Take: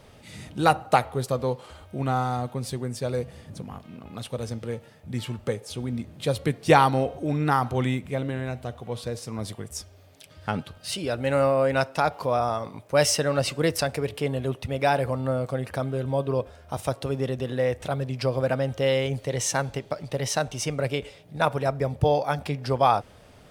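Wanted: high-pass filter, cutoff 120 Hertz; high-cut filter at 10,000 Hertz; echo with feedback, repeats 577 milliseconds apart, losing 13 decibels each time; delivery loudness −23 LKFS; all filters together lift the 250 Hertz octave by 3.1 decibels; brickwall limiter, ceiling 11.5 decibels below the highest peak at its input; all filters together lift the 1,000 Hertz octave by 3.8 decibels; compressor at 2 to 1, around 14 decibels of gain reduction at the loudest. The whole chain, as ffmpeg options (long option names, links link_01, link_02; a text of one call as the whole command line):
ffmpeg -i in.wav -af "highpass=120,lowpass=10000,equalizer=frequency=250:width_type=o:gain=4,equalizer=frequency=1000:width_type=o:gain=5,acompressor=threshold=-36dB:ratio=2,alimiter=level_in=1.5dB:limit=-24dB:level=0:latency=1,volume=-1.5dB,aecho=1:1:577|1154|1731:0.224|0.0493|0.0108,volume=14.5dB" out.wav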